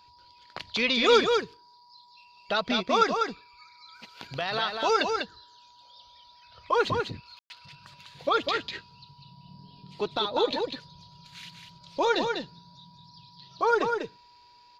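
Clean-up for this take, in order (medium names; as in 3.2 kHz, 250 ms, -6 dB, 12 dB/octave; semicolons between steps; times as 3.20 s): band-stop 970 Hz, Q 30; room tone fill 7.39–7.50 s; inverse comb 197 ms -5 dB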